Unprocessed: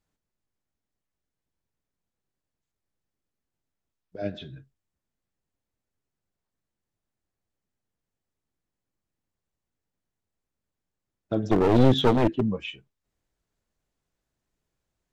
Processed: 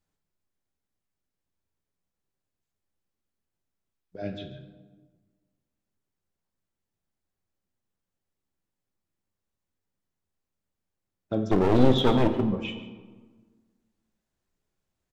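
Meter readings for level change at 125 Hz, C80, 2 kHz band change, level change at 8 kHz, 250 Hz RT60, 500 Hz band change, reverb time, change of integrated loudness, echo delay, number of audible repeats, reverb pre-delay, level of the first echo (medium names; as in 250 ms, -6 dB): -2.0 dB, 10.5 dB, -1.0 dB, no reading, 1.8 s, -1.0 dB, 1.5 s, -2.0 dB, 146 ms, 1, 4 ms, -17.0 dB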